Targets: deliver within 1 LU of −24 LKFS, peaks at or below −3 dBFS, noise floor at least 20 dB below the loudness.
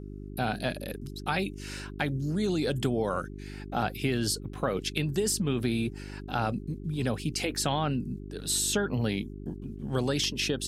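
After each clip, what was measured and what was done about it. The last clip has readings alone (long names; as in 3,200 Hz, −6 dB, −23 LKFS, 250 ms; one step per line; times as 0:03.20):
mains hum 50 Hz; hum harmonics up to 400 Hz; level of the hum −38 dBFS; integrated loudness −30.5 LKFS; sample peak −13.0 dBFS; target loudness −24.0 LKFS
→ hum removal 50 Hz, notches 8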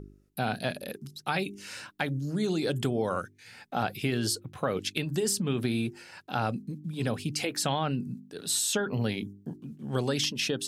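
mains hum none found; integrated loudness −31.0 LKFS; sample peak −13.5 dBFS; target loudness −24.0 LKFS
→ level +7 dB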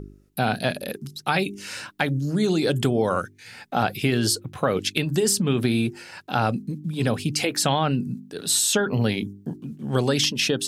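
integrated loudness −24.0 LKFS; sample peak −6.5 dBFS; background noise floor −52 dBFS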